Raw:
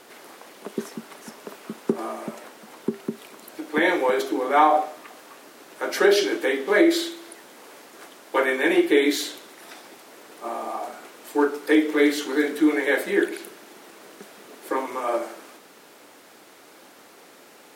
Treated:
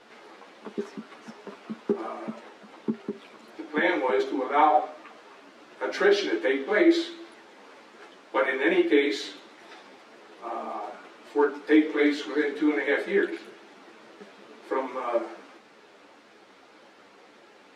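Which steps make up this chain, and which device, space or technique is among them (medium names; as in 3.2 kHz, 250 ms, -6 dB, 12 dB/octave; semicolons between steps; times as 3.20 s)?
string-machine ensemble chorus (three-phase chorus; low-pass 4.2 kHz 12 dB/octave)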